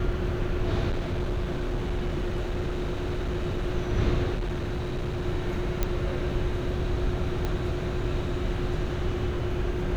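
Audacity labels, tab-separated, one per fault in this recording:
0.890000	3.640000	clipped -24 dBFS
4.340000	5.260000	clipped -25.5 dBFS
5.830000	5.830000	pop -11 dBFS
7.450000	7.450000	pop -16 dBFS

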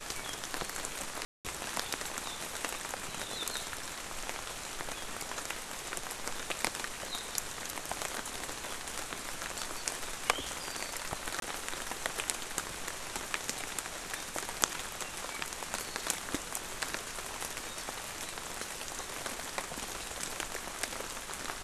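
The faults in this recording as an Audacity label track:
1.250000	1.450000	dropout 198 ms
11.400000	11.420000	dropout 22 ms

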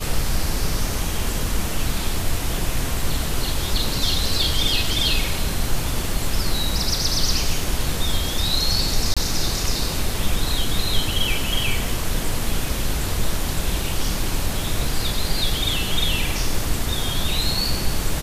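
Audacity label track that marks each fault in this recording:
9.140000	9.170000	dropout 26 ms

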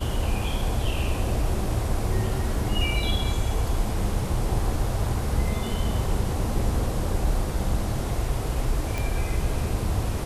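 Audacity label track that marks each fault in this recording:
8.980000	8.980000	pop

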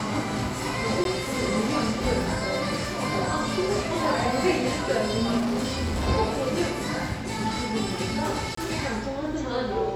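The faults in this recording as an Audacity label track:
1.040000	1.050000	dropout 12 ms
5.370000	6.090000	clipped -23 dBFS
8.550000	8.570000	dropout 24 ms

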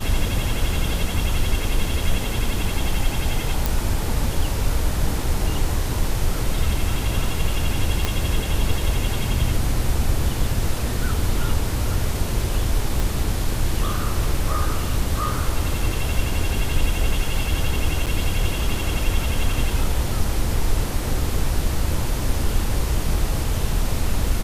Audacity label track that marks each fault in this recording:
3.660000	3.660000	pop
8.050000	8.050000	pop -6 dBFS
13.000000	13.000000	pop
18.060000	18.070000	dropout 7.7 ms

